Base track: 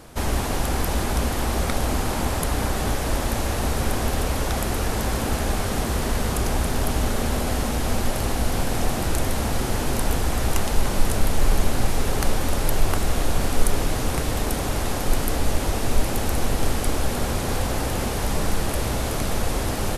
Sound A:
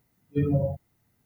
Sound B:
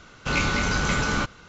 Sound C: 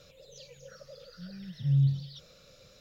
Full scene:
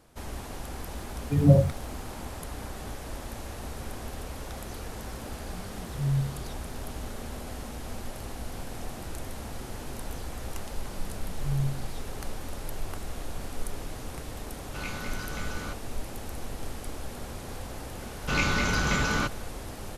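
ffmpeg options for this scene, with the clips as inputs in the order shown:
ffmpeg -i bed.wav -i cue0.wav -i cue1.wav -i cue2.wav -filter_complex "[3:a]asplit=2[link_01][link_02];[2:a]asplit=2[link_03][link_04];[0:a]volume=-14.5dB[link_05];[1:a]aphaser=in_gain=1:out_gain=1:delay=1:decay=0.76:speed=1.7:type=sinusoidal,atrim=end=1.25,asetpts=PTS-STARTPTS,volume=-4.5dB,afade=type=in:duration=0.004:curve=hsin,afade=type=out:start_time=1.246:duration=0.004:curve=hsin,adelay=950[link_06];[link_01]atrim=end=2.8,asetpts=PTS-STARTPTS,volume=-3dB,afade=type=in:duration=0.004:curve=hsin,afade=type=out:start_time=2.796:duration=0.004:curve=hsin,adelay=4340[link_07];[link_02]atrim=end=2.8,asetpts=PTS-STARTPTS,volume=-5dB,afade=type=in:duration=0.004:curve=hsin,afade=type=out:start_time=2.796:duration=0.004:curve=hsin,adelay=9800[link_08];[link_03]atrim=end=1.48,asetpts=PTS-STARTPTS,volume=-14dB,afade=type=in:duration=0.004:curve=hsin,afade=type=out:start_time=1.476:duration=0.004:curve=hsin,adelay=14480[link_09];[link_04]atrim=end=1.48,asetpts=PTS-STARTPTS,volume=-2.5dB,afade=type=in:duration=0.004:curve=hsin,afade=type=out:start_time=1.476:duration=0.004:curve=hsin,adelay=18020[link_10];[link_05][link_06][link_07][link_08][link_09][link_10]amix=inputs=6:normalize=0" out.wav

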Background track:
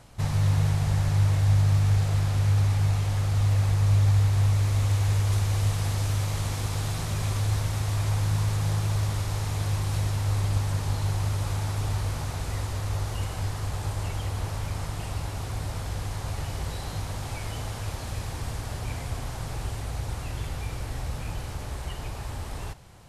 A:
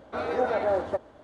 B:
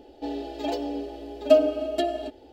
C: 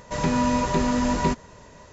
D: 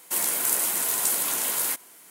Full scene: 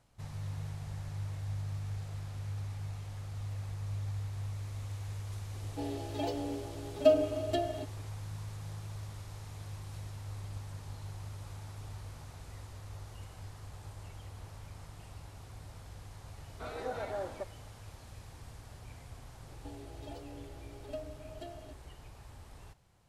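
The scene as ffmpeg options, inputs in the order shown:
ffmpeg -i bed.wav -i cue0.wav -i cue1.wav -filter_complex "[2:a]asplit=2[link_01][link_02];[0:a]volume=-17dB[link_03];[1:a]highshelf=frequency=3300:gain=10.5[link_04];[link_02]acompressor=threshold=-37dB:ratio=2:attack=13:release=747:knee=1:detection=peak[link_05];[link_01]atrim=end=2.52,asetpts=PTS-STARTPTS,volume=-6.5dB,afade=type=in:duration=0.004:curve=hsin,afade=type=out:start_time=2.516:duration=0.004:curve=hsin,adelay=5550[link_06];[link_04]atrim=end=1.23,asetpts=PTS-STARTPTS,volume=-13dB,afade=type=in:duration=0.004:curve=hsin,afade=type=out:start_time=1.226:duration=0.004:curve=hsin,adelay=16470[link_07];[link_05]atrim=end=2.52,asetpts=PTS-STARTPTS,volume=-12dB,afade=type=in:duration=0.004:curve=hsin,afade=type=out:start_time=2.516:duration=0.004:curve=hsin,adelay=19430[link_08];[link_03][link_06][link_07][link_08]amix=inputs=4:normalize=0" out.wav

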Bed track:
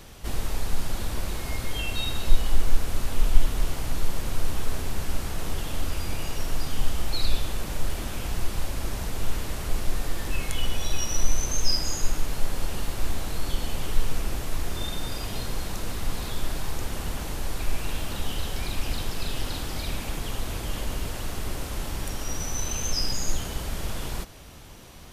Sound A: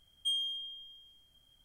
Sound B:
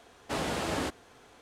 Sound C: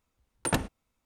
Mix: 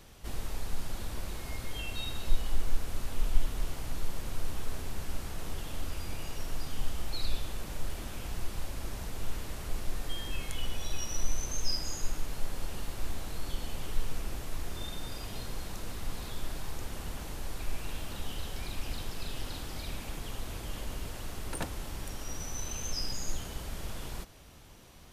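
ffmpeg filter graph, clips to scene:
ffmpeg -i bed.wav -i cue0.wav -i cue1.wav -i cue2.wav -filter_complex "[0:a]volume=-8dB[link_01];[1:a]atrim=end=1.64,asetpts=PTS-STARTPTS,volume=-11.5dB,afade=type=in:duration=0.004:curve=hsin,afade=type=out:start_time=1.636:duration=0.004:curve=hsin,adelay=9840[link_02];[3:a]atrim=end=1.05,asetpts=PTS-STARTPTS,volume=-10dB,afade=type=in:duration=0.004:curve=hsin,afade=type=out:start_time=1.046:duration=0.004:curve=hsin,adelay=21080[link_03];[link_01][link_02][link_03]amix=inputs=3:normalize=0" out.wav

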